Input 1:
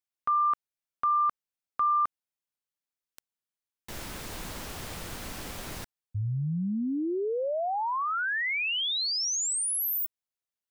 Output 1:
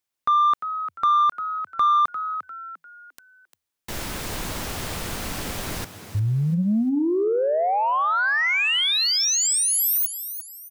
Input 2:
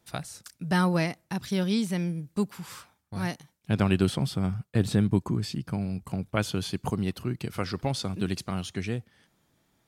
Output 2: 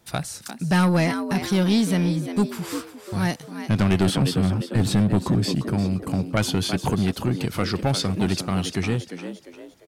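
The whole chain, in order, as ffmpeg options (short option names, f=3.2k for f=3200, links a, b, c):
-filter_complex "[0:a]asplit=5[a][b][c][d][e];[b]adelay=349,afreqshift=80,volume=-12dB[f];[c]adelay=698,afreqshift=160,volume=-20.9dB[g];[d]adelay=1047,afreqshift=240,volume=-29.7dB[h];[e]adelay=1396,afreqshift=320,volume=-38.6dB[i];[a][f][g][h][i]amix=inputs=5:normalize=0,asoftclip=type=tanh:threshold=-21.5dB,volume=8.5dB"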